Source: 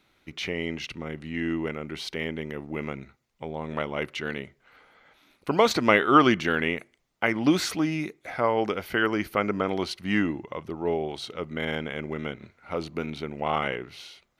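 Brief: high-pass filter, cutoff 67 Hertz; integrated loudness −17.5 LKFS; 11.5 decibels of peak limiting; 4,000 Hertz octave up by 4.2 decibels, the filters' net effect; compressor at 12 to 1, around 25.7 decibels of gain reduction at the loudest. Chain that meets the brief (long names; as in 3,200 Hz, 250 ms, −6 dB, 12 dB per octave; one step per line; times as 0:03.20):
high-pass filter 67 Hz
parametric band 4,000 Hz +5.5 dB
downward compressor 12 to 1, threshold −38 dBFS
level +28 dB
brickwall limiter −5 dBFS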